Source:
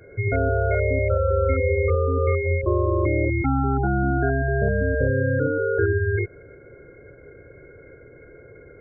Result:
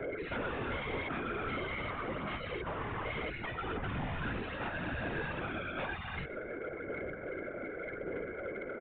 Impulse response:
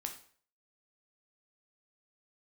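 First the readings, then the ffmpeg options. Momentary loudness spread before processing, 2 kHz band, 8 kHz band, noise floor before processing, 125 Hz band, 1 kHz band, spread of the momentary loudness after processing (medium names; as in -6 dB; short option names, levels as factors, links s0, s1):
2 LU, -9.5 dB, no reading, -47 dBFS, -20.5 dB, -10.0 dB, 4 LU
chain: -filter_complex "[0:a]asplit=2[s0][s1];[s1]highpass=f=720:p=1,volume=14.1,asoftclip=type=tanh:threshold=0.398[s2];[s0][s2]amix=inputs=2:normalize=0,lowpass=f=1300:p=1,volume=0.501,asplit=2[s3][s4];[s4]acompressor=threshold=0.0562:ratio=6,volume=0.841[s5];[s3][s5]amix=inputs=2:normalize=0,alimiter=limit=0.282:level=0:latency=1,aphaser=in_gain=1:out_gain=1:delay=3.5:decay=0.46:speed=0.86:type=sinusoidal,afftfilt=real='re*lt(hypot(re,im),0.562)':imag='im*lt(hypot(re,im),0.562)':win_size=1024:overlap=0.75,afftfilt=real='hypot(re,im)*cos(2*PI*random(0))':imag='hypot(re,im)*sin(2*PI*random(1))':win_size=512:overlap=0.75,asoftclip=type=tanh:threshold=0.0562,asplit=4[s6][s7][s8][s9];[s7]adelay=121,afreqshift=-140,volume=0.106[s10];[s8]adelay=242,afreqshift=-280,volume=0.0437[s11];[s9]adelay=363,afreqshift=-420,volume=0.0178[s12];[s6][s10][s11][s12]amix=inputs=4:normalize=0,aresample=8000,aresample=44100,volume=0.596"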